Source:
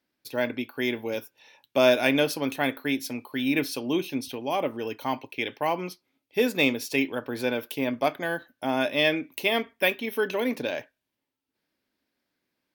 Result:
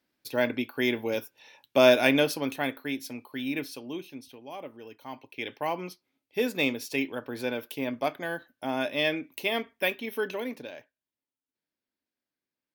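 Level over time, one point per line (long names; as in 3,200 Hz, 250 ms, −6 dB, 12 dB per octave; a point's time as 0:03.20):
0:02.02 +1 dB
0:02.87 −5.5 dB
0:03.40 −5.5 dB
0:04.26 −13.5 dB
0:05.04 −13.5 dB
0:05.49 −4 dB
0:10.27 −4 dB
0:10.73 −12.5 dB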